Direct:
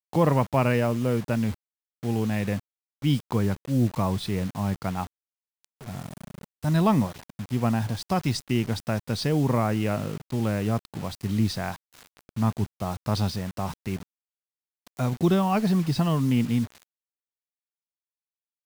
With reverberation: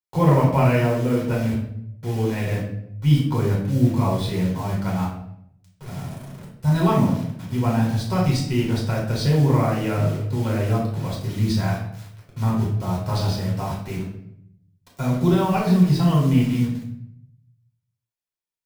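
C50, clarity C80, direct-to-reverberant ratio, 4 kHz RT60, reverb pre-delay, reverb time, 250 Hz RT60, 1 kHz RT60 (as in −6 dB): 3.5 dB, 7.5 dB, −4.0 dB, 0.50 s, 3 ms, 0.70 s, 1.0 s, 0.65 s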